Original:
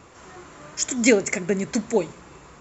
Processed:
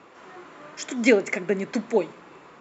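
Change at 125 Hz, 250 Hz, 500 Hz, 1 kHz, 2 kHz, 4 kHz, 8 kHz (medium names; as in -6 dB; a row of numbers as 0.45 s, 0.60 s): -5.0 dB, -2.0 dB, 0.0 dB, 0.0 dB, -0.5 dB, -4.5 dB, no reading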